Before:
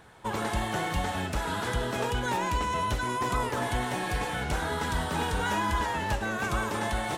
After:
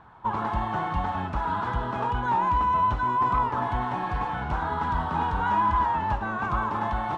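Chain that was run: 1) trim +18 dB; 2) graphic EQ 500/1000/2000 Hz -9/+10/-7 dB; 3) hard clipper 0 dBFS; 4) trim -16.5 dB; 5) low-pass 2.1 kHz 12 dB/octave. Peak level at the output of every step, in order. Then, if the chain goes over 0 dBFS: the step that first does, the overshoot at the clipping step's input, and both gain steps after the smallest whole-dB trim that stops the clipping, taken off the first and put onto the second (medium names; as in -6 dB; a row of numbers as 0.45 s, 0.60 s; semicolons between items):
+1.0 dBFS, +3.5 dBFS, 0.0 dBFS, -16.5 dBFS, -16.0 dBFS; step 1, 3.5 dB; step 1 +14 dB, step 4 -12.5 dB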